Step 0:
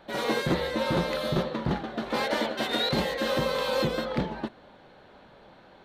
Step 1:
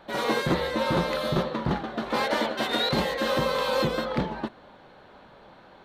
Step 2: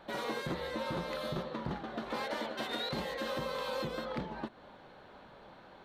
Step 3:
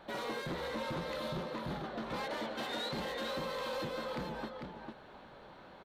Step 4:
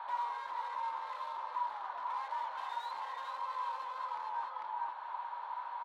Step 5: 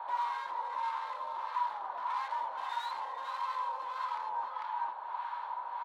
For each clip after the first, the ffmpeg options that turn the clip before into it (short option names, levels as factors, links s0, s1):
-af "equalizer=f=1100:t=o:w=0.77:g=3.5,volume=1.12"
-af "acompressor=threshold=0.02:ratio=2.5,volume=0.668"
-filter_complex "[0:a]asplit=2[s0][s1];[s1]aecho=0:1:448:0.447[s2];[s0][s2]amix=inputs=2:normalize=0,asoftclip=type=tanh:threshold=0.0266"
-filter_complex "[0:a]asplit=2[s0][s1];[s1]highpass=f=720:p=1,volume=5.62,asoftclip=type=tanh:threshold=0.0266[s2];[s0][s2]amix=inputs=2:normalize=0,lowpass=f=2300:p=1,volume=0.501,acompressor=threshold=0.00794:ratio=6,highpass=f=960:t=q:w=12,volume=0.531"
-filter_complex "[0:a]acrossover=split=900[s0][s1];[s0]aeval=exprs='val(0)*(1-0.7/2+0.7/2*cos(2*PI*1.6*n/s))':c=same[s2];[s1]aeval=exprs='val(0)*(1-0.7/2-0.7/2*cos(2*PI*1.6*n/s))':c=same[s3];[s2][s3]amix=inputs=2:normalize=0,volume=2.11"